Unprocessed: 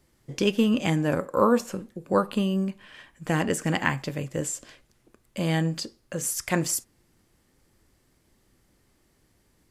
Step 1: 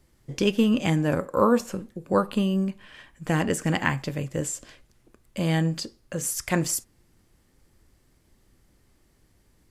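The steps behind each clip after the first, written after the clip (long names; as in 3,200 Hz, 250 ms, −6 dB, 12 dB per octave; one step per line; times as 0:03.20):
low-shelf EQ 91 Hz +7.5 dB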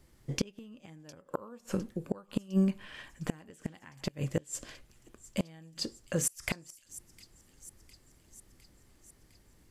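gate with flip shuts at −17 dBFS, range −29 dB
delay with a high-pass on its return 707 ms, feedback 64%, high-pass 4,300 Hz, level −15 dB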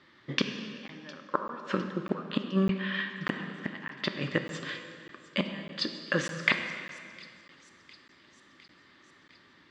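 loudspeaker in its box 270–4,200 Hz, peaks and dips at 460 Hz −8 dB, 730 Hz −8 dB, 1,200 Hz +7 dB, 1,800 Hz +8 dB, 3,600 Hz +7 dB
dense smooth reverb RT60 2.3 s, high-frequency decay 0.8×, DRR 5.5 dB
regular buffer underruns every 0.60 s, samples 512, zero, from 0:00.88
level +8 dB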